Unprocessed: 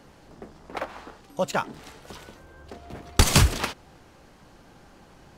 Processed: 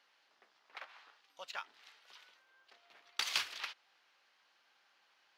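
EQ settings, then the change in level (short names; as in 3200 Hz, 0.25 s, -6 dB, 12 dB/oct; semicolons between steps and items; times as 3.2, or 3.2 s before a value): HPF 1400 Hz 6 dB/oct; air absorption 300 m; differentiator; +4.5 dB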